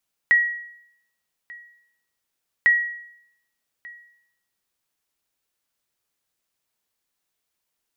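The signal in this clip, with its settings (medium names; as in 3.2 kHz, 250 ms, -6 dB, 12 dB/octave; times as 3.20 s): sonar ping 1.91 kHz, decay 0.74 s, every 2.35 s, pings 2, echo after 1.19 s, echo -24 dB -10 dBFS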